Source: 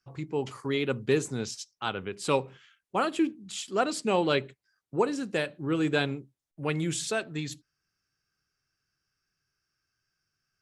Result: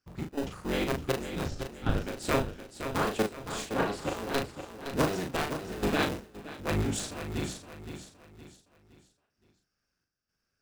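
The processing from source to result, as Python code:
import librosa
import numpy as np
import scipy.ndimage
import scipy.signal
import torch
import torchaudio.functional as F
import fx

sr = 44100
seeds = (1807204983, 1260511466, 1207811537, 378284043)

p1 = fx.cycle_switch(x, sr, every=3, mode='inverted')
p2 = fx.sample_hold(p1, sr, seeds[0], rate_hz=1100.0, jitter_pct=0)
p3 = p1 + F.gain(torch.from_numpy(p2), -6.5).numpy()
p4 = fx.bass_treble(p3, sr, bass_db=-3, treble_db=-11, at=(3.65, 4.17))
p5 = fx.step_gate(p4, sr, bpm=121, pattern='xx.xxxxxx..x', floor_db=-12.0, edge_ms=4.5)
p6 = fx.riaa(p5, sr, side='playback', at=(1.46, 1.98))
p7 = fx.doubler(p6, sr, ms=39.0, db=-5)
p8 = fx.echo_feedback(p7, sr, ms=516, feedback_pct=38, wet_db=-9)
p9 = fx.band_widen(p8, sr, depth_pct=100, at=(5.97, 6.99))
y = F.gain(torch.from_numpy(p9), -4.0).numpy()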